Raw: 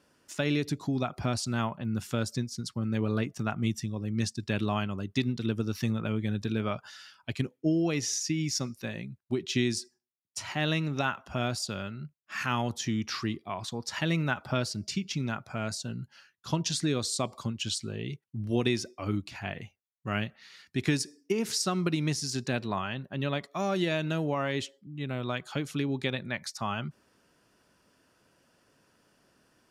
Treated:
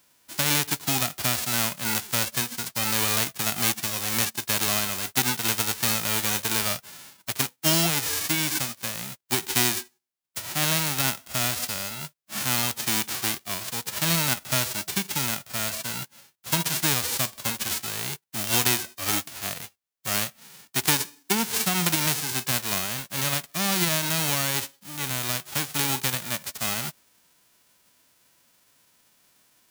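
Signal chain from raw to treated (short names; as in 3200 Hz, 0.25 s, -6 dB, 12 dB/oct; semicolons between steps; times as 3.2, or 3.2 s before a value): spectral whitening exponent 0.1; gain +4.5 dB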